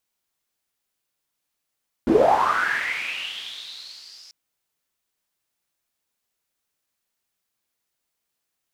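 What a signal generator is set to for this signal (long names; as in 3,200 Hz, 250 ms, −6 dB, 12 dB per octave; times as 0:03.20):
filter sweep on noise pink, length 2.24 s bandpass, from 230 Hz, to 5,200 Hz, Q 7.8, linear, gain ramp −32 dB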